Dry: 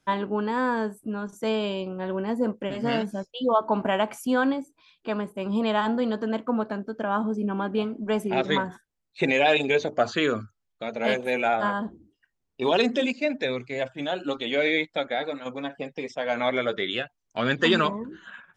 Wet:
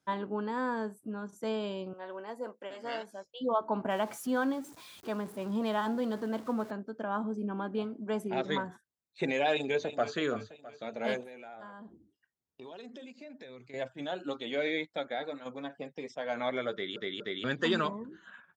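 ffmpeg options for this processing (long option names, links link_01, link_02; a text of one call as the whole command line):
ffmpeg -i in.wav -filter_complex "[0:a]asettb=1/sr,asplit=3[link_01][link_02][link_03];[link_01]atrim=end=1.934[link_04];[link_02]atrim=start=1.93:end=3.25,asetpts=PTS-STARTPTS,afade=type=in:duration=0.004:curve=qsin,afade=type=out:start_time=1.316:duration=0.004:curve=qsin,highpass=530[link_05];[link_03]atrim=start=3.246[link_06];[link_04][link_05]acrossfade=duration=0.004:curve1=hsin:curve2=qsin[link_07];[link_07][link_06]acrossfade=duration=0.004:curve1=qsin:curve2=hsin,asettb=1/sr,asplit=3[link_08][link_09][link_10];[link_08]atrim=end=3.904[link_11];[link_09]atrim=start=3.9:end=6.71,asetpts=PTS-STARTPTS,afade=type=in:duration=0.004:curve=qsin,afade=type=out:start_time=2.806:duration=0.004:curve=qsin,aeval=exprs='val(0)+0.5*0.0133*sgn(val(0))':channel_layout=same[link_12];[link_10]atrim=start=6.706[link_13];[link_11][link_12]acrossfade=duration=0.004:curve1=hsin:curve2=qsin[link_14];[link_14][link_13]acrossfade=duration=0.004:curve1=qsin:curve2=hsin,asplit=2[link_15][link_16];[link_16]afade=type=in:start_time=9.51:duration=0.01,afade=type=out:start_time=10.15:duration=0.01,aecho=0:1:330|660|990|1320|1650:0.237137|0.118569|0.0592843|0.0296422|0.0148211[link_17];[link_15][link_17]amix=inputs=2:normalize=0,asettb=1/sr,asplit=3[link_18][link_19][link_20];[link_18]atrim=end=11.234[link_21];[link_19]atrim=start=11.23:end=13.74,asetpts=PTS-STARTPTS,afade=type=in:duration=0.004:curve=qsin,afade=type=out:start_time=2.506:duration=0.004:curve=qsin,acompressor=threshold=-39dB:ratio=4:attack=3.2:release=140:knee=1:detection=peak[link_22];[link_20]atrim=start=13.736[link_23];[link_21][link_22]acrossfade=duration=0.004:curve1=hsin:curve2=qsin[link_24];[link_24][link_23]acrossfade=duration=0.004:curve1=qsin:curve2=hsin,asplit=4[link_25][link_26][link_27][link_28];[link_25]atrim=end=16.962[link_29];[link_26]atrim=start=16.718:end=16.962[link_30];[link_27]atrim=start=16.718:end=16.962[link_31];[link_28]atrim=start=17.438[link_32];[link_29][link_30]acrossfade=duration=0.004:curve1=hsin:curve2=hsin[link_33];[link_33][link_31]acrossfade=duration=0.004:curve1=hsin:curve2=hsin[link_34];[link_34][link_32]acrossfade=duration=0.004:curve1=hsin:curve2=hsin,highpass=85,equalizer=frequency=2600:width=2.2:gain=-4.5,volume=-7.5dB" out.wav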